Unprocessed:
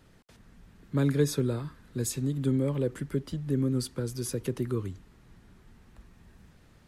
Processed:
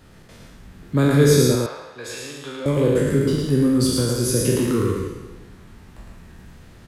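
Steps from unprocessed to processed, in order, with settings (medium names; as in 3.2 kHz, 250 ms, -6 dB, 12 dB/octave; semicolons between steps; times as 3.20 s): spectral sustain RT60 1.27 s; 1.55–2.66 s: three-band isolator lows -24 dB, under 570 Hz, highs -21 dB, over 4.3 kHz; delay 110 ms -3.5 dB; trim +7.5 dB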